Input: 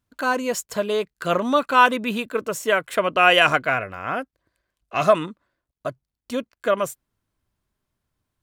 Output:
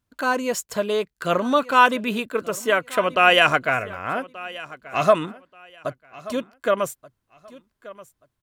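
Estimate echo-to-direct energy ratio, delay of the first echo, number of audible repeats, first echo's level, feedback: −19.0 dB, 1,181 ms, 2, −19.0 dB, 23%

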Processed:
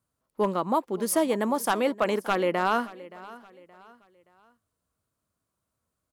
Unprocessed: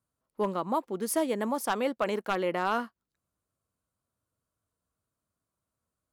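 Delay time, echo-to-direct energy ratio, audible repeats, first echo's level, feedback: 573 ms, −18.5 dB, 2, −19.0 dB, 37%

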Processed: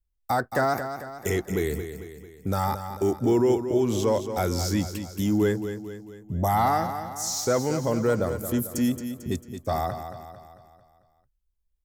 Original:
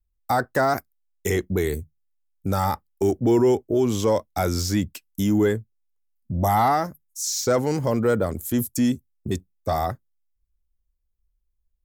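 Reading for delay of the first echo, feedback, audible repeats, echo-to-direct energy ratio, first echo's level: 223 ms, 50%, 5, −8.5 dB, −9.5 dB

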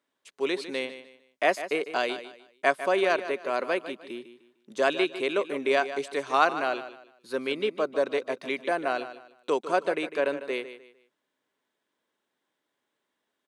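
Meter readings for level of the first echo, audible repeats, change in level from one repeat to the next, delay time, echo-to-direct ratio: −12.5 dB, 3, −10.5 dB, 151 ms, −12.0 dB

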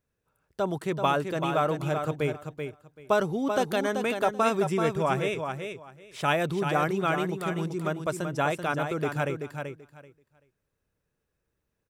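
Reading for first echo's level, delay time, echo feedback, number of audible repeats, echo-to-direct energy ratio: −6.5 dB, 384 ms, 18%, 2, −6.5 dB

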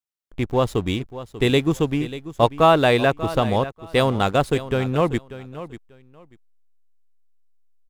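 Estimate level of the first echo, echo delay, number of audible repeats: −14.5 dB, 590 ms, 2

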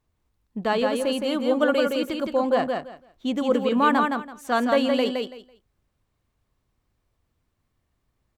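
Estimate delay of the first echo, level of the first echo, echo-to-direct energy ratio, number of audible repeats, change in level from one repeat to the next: 166 ms, −4.0 dB, −4.0 dB, 3, −14.0 dB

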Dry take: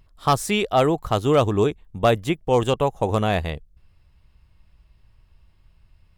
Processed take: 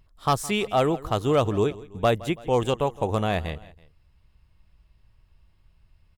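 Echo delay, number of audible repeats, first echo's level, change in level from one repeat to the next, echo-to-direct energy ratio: 165 ms, 2, −19.5 dB, −5.0 dB, −18.5 dB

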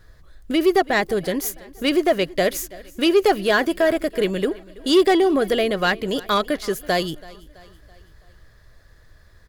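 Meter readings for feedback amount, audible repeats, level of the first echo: 50%, 3, −21.5 dB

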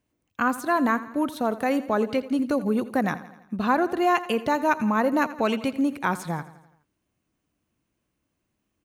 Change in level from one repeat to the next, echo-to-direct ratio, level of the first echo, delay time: −5.0 dB, −14.5 dB, −16.0 dB, 84 ms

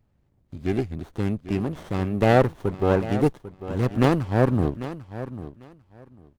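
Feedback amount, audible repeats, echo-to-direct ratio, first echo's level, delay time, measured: 18%, 2, −13.5 dB, −13.5 dB, 796 ms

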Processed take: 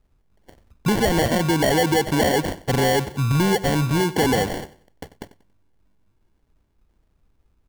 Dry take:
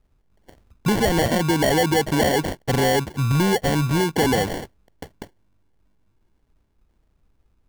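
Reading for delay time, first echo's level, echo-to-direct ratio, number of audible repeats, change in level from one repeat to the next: 93 ms, −17.0 dB, −16.5 dB, 2, −10.5 dB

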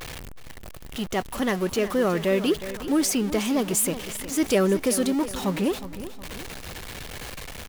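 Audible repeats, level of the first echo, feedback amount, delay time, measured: 3, −13.0 dB, 42%, 364 ms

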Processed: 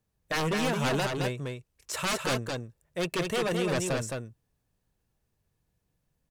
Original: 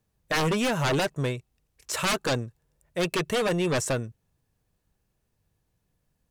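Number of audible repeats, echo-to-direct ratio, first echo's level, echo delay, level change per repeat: 1, −4.0 dB, −4.0 dB, 216 ms, repeats not evenly spaced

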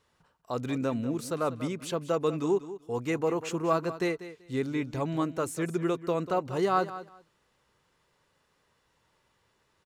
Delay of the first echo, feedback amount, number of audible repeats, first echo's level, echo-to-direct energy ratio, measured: 192 ms, 18%, 2, −14.0 dB, −14.0 dB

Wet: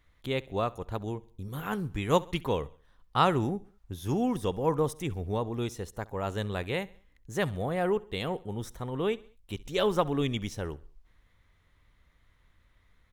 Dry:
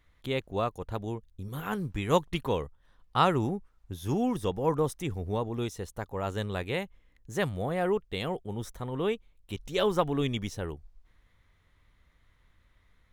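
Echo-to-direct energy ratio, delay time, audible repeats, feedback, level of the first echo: −21.0 dB, 67 ms, 2, 47%, −22.0 dB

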